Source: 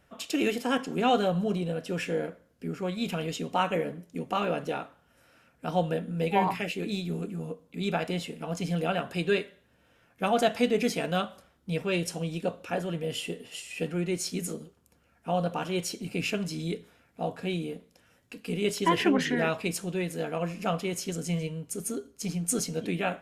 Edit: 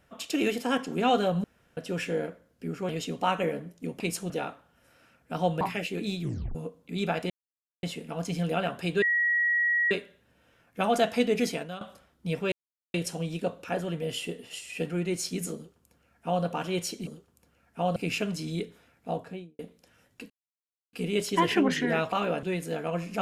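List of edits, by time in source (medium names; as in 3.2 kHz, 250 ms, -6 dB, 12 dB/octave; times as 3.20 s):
1.44–1.77 s: room tone
2.89–3.21 s: delete
4.32–4.63 s: swap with 19.61–19.91 s
5.94–6.46 s: delete
7.07 s: tape stop 0.33 s
8.15 s: insert silence 0.53 s
9.34 s: add tone 1.91 kHz -22 dBFS 0.89 s
10.94–11.24 s: fade out quadratic, to -13 dB
11.95 s: insert silence 0.42 s
14.56–15.45 s: copy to 16.08 s
17.21–17.71 s: studio fade out
18.42 s: insert silence 0.63 s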